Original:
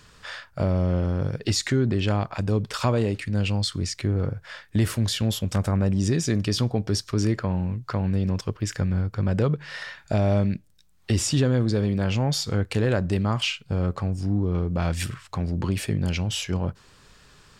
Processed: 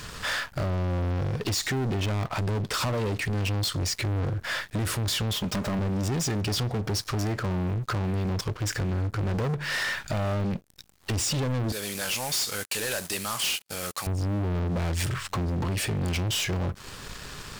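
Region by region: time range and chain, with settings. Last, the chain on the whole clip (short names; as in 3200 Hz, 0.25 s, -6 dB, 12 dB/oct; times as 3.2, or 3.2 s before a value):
5.33–5.79 median filter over 5 samples + low shelf 120 Hz -11.5 dB + comb 4.9 ms, depth 46%
11.72–14.07 CVSD 64 kbps + differentiator + sample leveller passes 2
whole clip: compressor 3:1, threshold -32 dBFS; sample leveller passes 5; gain -4.5 dB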